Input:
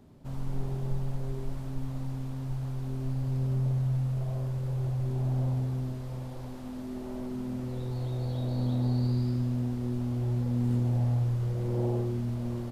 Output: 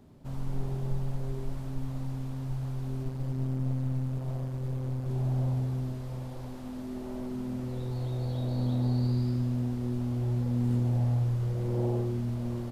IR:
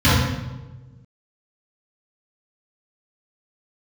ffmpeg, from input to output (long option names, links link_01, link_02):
-filter_complex "[0:a]asettb=1/sr,asplit=3[link_01][link_02][link_03];[link_01]atrim=end=3.034[link_04];[link_02]atrim=start=3.03:end=5.09,asetpts=PTS-STARTPTS,afade=type=in:duration=0.004:curve=qsin,afade=type=out:start_time=2.056:duration=0.004:curve=qsin,aeval=exprs='clip(val(0),-1,0.0158)':channel_layout=same[link_05];[link_03]atrim=start=5.086[link_06];[link_04][link_05]acrossfade=duration=0.004:curve1=hsin:curve2=qsin[link_07];[link_07][link_06]acrossfade=duration=0.004:curve1=qsin:curve2=hsin"